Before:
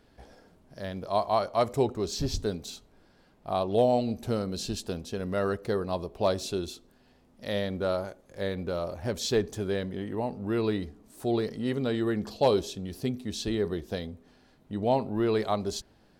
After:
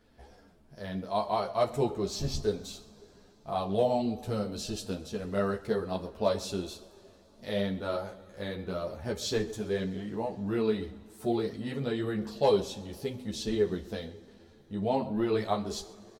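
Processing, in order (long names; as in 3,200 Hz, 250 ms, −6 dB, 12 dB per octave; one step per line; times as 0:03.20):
slap from a distant wall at 22 metres, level −19 dB
coupled-rooms reverb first 0.29 s, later 3.8 s, from −21 dB, DRR 8 dB
string-ensemble chorus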